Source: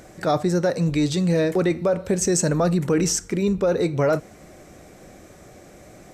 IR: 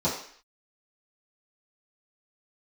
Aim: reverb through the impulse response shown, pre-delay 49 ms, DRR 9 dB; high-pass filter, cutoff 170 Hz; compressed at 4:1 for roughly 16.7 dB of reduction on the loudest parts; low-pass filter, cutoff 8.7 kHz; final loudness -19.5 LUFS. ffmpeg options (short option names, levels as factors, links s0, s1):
-filter_complex "[0:a]highpass=170,lowpass=8700,acompressor=threshold=0.0126:ratio=4,asplit=2[s0][s1];[1:a]atrim=start_sample=2205,adelay=49[s2];[s1][s2]afir=irnorm=-1:irlink=0,volume=0.0944[s3];[s0][s3]amix=inputs=2:normalize=0,volume=8.41"